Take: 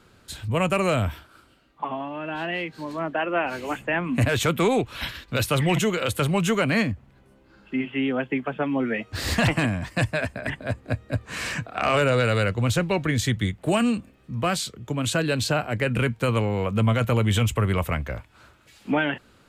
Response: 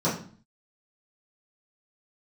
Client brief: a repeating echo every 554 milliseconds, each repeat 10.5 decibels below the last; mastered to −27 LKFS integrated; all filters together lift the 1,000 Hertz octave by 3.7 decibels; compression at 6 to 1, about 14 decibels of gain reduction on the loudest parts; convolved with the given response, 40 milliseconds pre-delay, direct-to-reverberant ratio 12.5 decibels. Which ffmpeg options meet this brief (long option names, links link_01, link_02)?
-filter_complex "[0:a]equalizer=frequency=1000:width_type=o:gain=5,acompressor=threshold=-32dB:ratio=6,aecho=1:1:554|1108|1662:0.299|0.0896|0.0269,asplit=2[link_01][link_02];[1:a]atrim=start_sample=2205,adelay=40[link_03];[link_02][link_03]afir=irnorm=-1:irlink=0,volume=-25.5dB[link_04];[link_01][link_04]amix=inputs=2:normalize=0,volume=7.5dB"